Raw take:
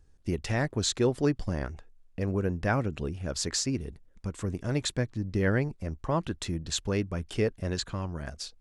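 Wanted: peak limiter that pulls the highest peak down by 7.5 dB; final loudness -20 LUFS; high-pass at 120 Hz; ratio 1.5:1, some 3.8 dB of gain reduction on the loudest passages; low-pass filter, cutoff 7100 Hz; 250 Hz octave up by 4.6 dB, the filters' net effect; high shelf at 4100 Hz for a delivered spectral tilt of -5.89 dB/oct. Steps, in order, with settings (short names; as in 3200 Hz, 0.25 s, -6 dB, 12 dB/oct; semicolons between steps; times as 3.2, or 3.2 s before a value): HPF 120 Hz; LPF 7100 Hz; bell 250 Hz +6.5 dB; high shelf 4100 Hz -8.5 dB; compressor 1.5:1, threshold -28 dBFS; gain +14.5 dB; limiter -7 dBFS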